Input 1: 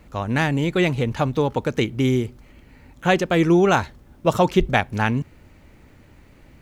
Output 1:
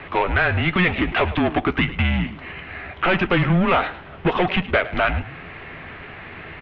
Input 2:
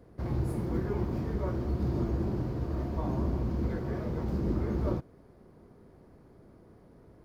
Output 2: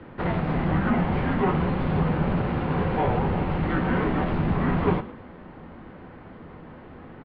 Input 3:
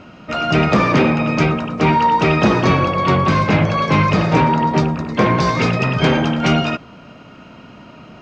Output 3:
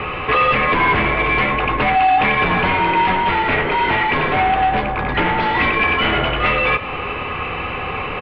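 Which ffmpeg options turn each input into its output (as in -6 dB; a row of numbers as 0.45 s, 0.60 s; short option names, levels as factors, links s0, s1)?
-filter_complex "[0:a]equalizer=f=170:t=o:w=2.5:g=3,acompressor=threshold=0.0631:ratio=6,asplit=2[s0][s1];[s1]highpass=f=720:p=1,volume=11.2,asoftclip=type=tanh:threshold=0.188[s2];[s0][s2]amix=inputs=2:normalize=0,lowpass=f=1900:p=1,volume=0.501,highpass=f=210:t=q:w=0.5412,highpass=f=210:t=q:w=1.307,lowpass=f=3200:t=q:w=0.5176,lowpass=f=3200:t=q:w=0.7071,lowpass=f=3200:t=q:w=1.932,afreqshift=-180,asplit=2[s3][s4];[s4]adelay=12,volume=0.266[s5];[s3][s5]amix=inputs=2:normalize=0,asplit=2[s6][s7];[s7]asplit=3[s8][s9][s10];[s8]adelay=106,afreqshift=40,volume=0.158[s11];[s9]adelay=212,afreqshift=80,volume=0.0507[s12];[s10]adelay=318,afreqshift=120,volume=0.0162[s13];[s11][s12][s13]amix=inputs=3:normalize=0[s14];[s6][s14]amix=inputs=2:normalize=0,crystalizer=i=7:c=0,volume=1.5"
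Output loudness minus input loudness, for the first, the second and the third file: +0.5 LU, +7.5 LU, -1.0 LU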